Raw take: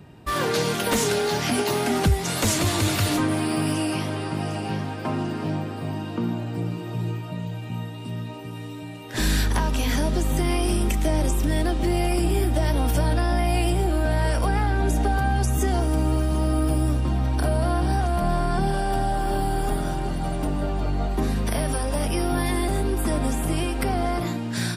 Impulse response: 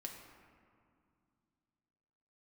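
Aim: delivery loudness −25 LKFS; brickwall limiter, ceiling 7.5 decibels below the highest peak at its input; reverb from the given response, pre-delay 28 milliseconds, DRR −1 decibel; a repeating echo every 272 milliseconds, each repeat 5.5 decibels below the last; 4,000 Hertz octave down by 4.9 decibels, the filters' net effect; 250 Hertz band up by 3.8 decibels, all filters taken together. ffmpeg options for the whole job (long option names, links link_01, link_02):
-filter_complex "[0:a]equalizer=frequency=250:width_type=o:gain=5,equalizer=frequency=4000:width_type=o:gain=-6.5,alimiter=limit=-16.5dB:level=0:latency=1,aecho=1:1:272|544|816|1088|1360|1632|1904:0.531|0.281|0.149|0.079|0.0419|0.0222|0.0118,asplit=2[link_01][link_02];[1:a]atrim=start_sample=2205,adelay=28[link_03];[link_02][link_03]afir=irnorm=-1:irlink=0,volume=4dB[link_04];[link_01][link_04]amix=inputs=2:normalize=0,volume=-3.5dB"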